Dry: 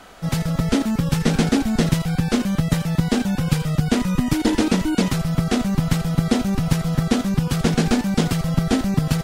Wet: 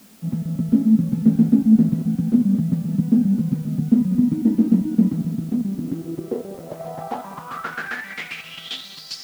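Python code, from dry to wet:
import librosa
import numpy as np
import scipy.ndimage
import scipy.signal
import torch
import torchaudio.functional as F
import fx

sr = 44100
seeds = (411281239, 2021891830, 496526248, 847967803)

p1 = fx.reverse_delay_fb(x, sr, ms=272, feedback_pct=49, wet_db=-11)
p2 = fx.tube_stage(p1, sr, drive_db=12.0, bias=0.75, at=(5.31, 6.8))
p3 = fx.filter_sweep_bandpass(p2, sr, from_hz=220.0, to_hz=5100.0, start_s=5.62, end_s=9.19, q=6.0)
p4 = p3 + 10.0 ** (-15.5 / 20.0) * np.pad(p3, (int(193 * sr / 1000.0), 0))[:len(p3)]
p5 = fx.quant_dither(p4, sr, seeds[0], bits=8, dither='triangular')
p6 = p4 + (p5 * 10.0 ** (-10.0 / 20.0))
y = p6 * 10.0 ** (6.0 / 20.0)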